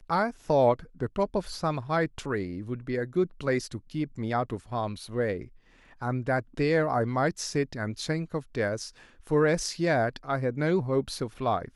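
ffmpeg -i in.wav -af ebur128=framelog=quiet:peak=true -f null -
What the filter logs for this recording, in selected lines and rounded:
Integrated loudness:
  I:         -28.9 LUFS
  Threshold: -39.1 LUFS
Loudness range:
  LRA:         3.3 LU
  Threshold: -49.5 LUFS
  LRA low:   -31.5 LUFS
  LRA high:  -28.1 LUFS
True peak:
  Peak:      -11.3 dBFS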